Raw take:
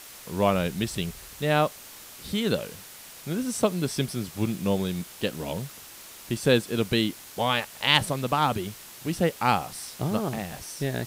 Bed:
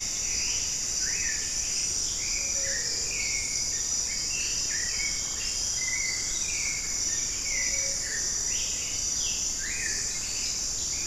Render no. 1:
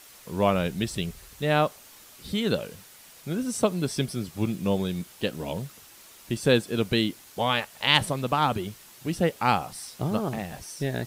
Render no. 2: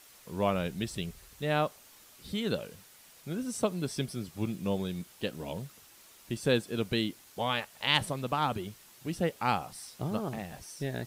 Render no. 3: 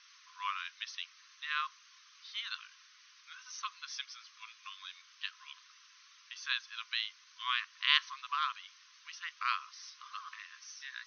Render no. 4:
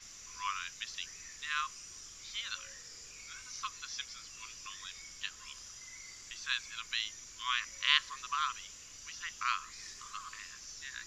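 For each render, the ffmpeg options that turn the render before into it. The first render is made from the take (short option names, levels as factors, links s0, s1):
-af "afftdn=nr=6:nf=-45"
-af "volume=0.501"
-af "afftfilt=real='re*between(b*sr/4096,1000,6400)':imag='im*between(b*sr/4096,1000,6400)':win_size=4096:overlap=0.75"
-filter_complex "[1:a]volume=0.0841[s0];[0:a][s0]amix=inputs=2:normalize=0"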